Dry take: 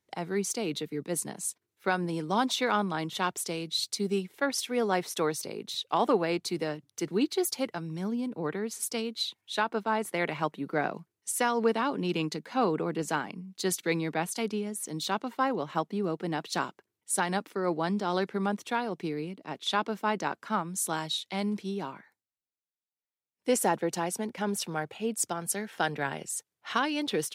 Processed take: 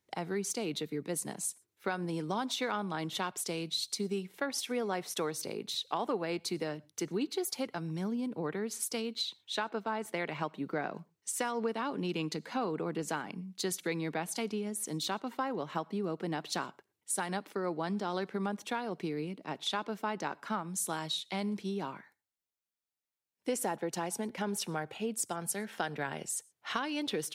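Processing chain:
0:09.13–0:11.68: parametric band 11,000 Hz −12 dB 0.25 octaves
downward compressor 3 to 1, threshold −32 dBFS, peak gain reduction 9.5 dB
convolution reverb, pre-delay 3 ms, DRR 25.5 dB

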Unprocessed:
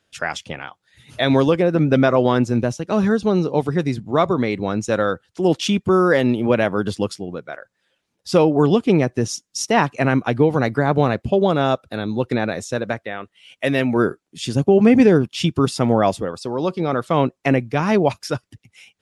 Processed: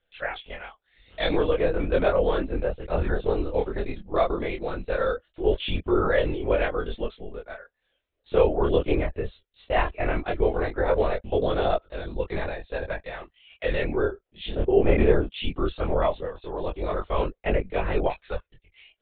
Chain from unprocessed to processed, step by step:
linear-prediction vocoder at 8 kHz whisper
graphic EQ with 10 bands 125 Hz −9 dB, 250 Hz −7 dB, 500 Hz +4 dB, 1,000 Hz −3 dB
multi-voice chorus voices 2, 0.17 Hz, delay 24 ms, depth 3.3 ms
level −2.5 dB

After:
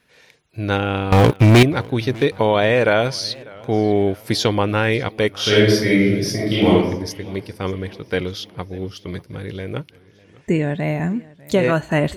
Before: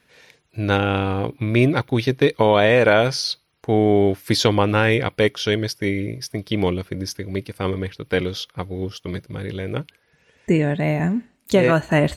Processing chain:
0:01.12–0:01.63: leveller curve on the samples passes 5
0:05.33–0:06.74: thrown reverb, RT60 0.81 s, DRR −8.5 dB
feedback echo with a swinging delay time 599 ms, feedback 52%, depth 118 cents, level −23 dB
level −1 dB

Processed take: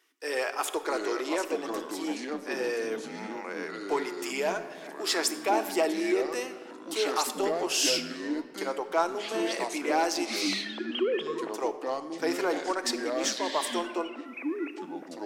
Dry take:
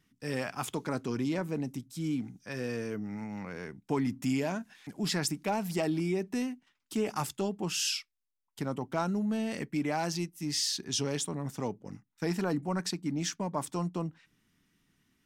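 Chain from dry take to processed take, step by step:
0:10.42–0:11.54: three sine waves on the formant tracks
elliptic high-pass filter 360 Hz, stop band 60 dB
in parallel at −12 dB: gain into a clipping stage and back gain 33.5 dB
on the sum: delay with pitch and tempo change per echo 575 ms, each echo −4 semitones, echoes 2, each echo −6 dB
rectangular room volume 2,200 cubic metres, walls mixed, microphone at 0.66 metres
level +4.5 dB

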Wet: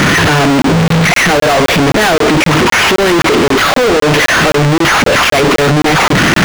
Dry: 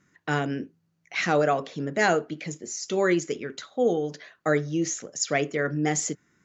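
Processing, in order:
linear delta modulator 16 kbit/s, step −20 dBFS
fuzz pedal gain 45 dB, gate −39 dBFS
regular buffer underruns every 0.26 s, samples 1,024, zero, from 0:00.62
level +5 dB

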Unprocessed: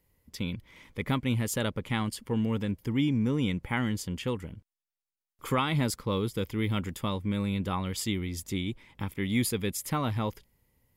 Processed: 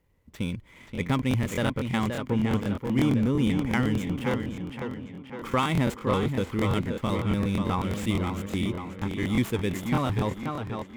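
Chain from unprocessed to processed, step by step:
running median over 9 samples
tape delay 531 ms, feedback 60%, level −4.5 dB, low-pass 3,700 Hz
regular buffer underruns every 0.12 s, samples 1,024, repeat, from 0:00.81
level +3 dB

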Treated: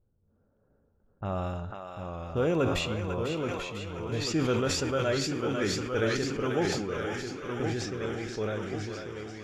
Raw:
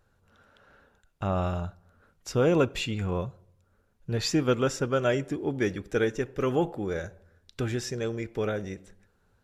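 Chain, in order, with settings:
low-pass that shuts in the quiet parts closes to 380 Hz, open at −24 dBFS
tuned comb filter 54 Hz, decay 0.61 s, harmonics all, mix 50%
feedback echo with a high-pass in the loop 495 ms, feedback 73%, high-pass 790 Hz, level −4.5 dB
delay with pitch and tempo change per echo 674 ms, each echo −1 semitone, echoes 2, each echo −6 dB
level that may fall only so fast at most 35 dB per second

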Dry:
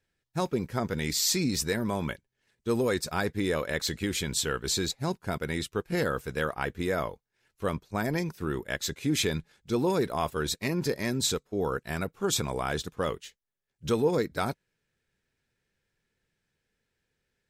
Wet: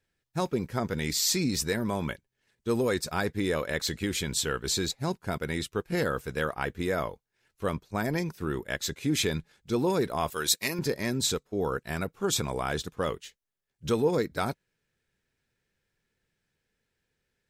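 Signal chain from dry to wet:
0:10.30–0:10.79: spectral tilt +3 dB per octave

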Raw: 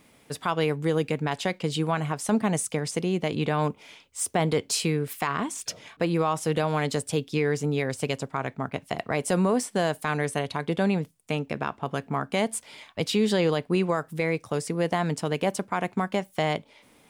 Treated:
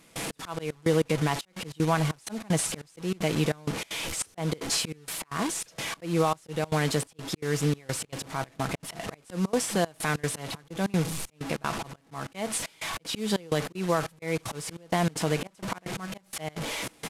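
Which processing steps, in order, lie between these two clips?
linear delta modulator 64 kbit/s, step −28.5 dBFS
comb filter 6.1 ms, depth 35%
in parallel at −3 dB: brickwall limiter −18.5 dBFS, peak gain reduction 7.5 dB
on the sum: volume swells 201 ms
gate pattern "..xx.xxxx" 192 BPM −24 dB
level −3.5 dB

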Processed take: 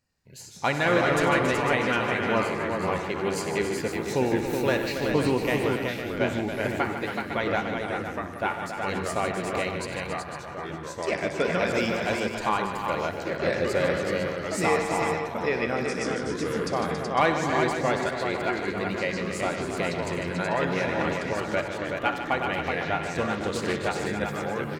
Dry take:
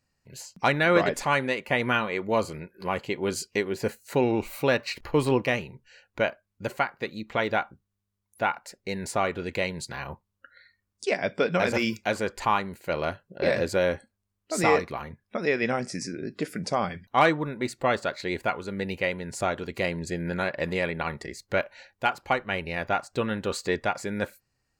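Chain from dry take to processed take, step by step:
multi-tap delay 62/95/150/277/375/504 ms −13.5/−14/−9.5/−9/−5/−9.5 dB
delay with pitch and tempo change per echo 89 ms, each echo −3 semitones, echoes 3, each echo −6 dB
0:23.32–0:24.06: highs frequency-modulated by the lows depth 0.26 ms
level −2.5 dB

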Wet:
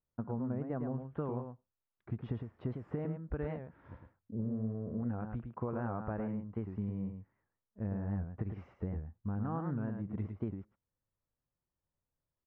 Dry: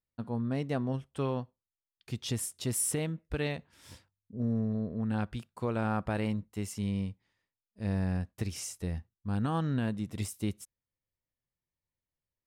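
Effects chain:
low-pass filter 1,500 Hz 24 dB per octave
downward compressor 6 to 1, threshold −36 dBFS, peak gain reduction 10 dB
single-tap delay 108 ms −6.5 dB
wow of a warped record 78 rpm, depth 160 cents
level +2.5 dB

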